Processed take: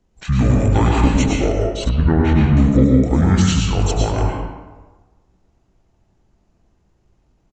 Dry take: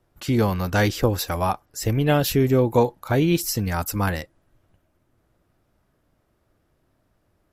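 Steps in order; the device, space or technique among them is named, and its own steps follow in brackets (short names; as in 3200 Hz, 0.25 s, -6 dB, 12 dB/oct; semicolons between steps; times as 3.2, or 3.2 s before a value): monster voice (pitch shift -10.5 st; low shelf 140 Hz +4 dB; reverb RT60 1.3 s, pre-delay 96 ms, DRR -2 dB); 1.89–2.57 air absorption 340 m; gain +1.5 dB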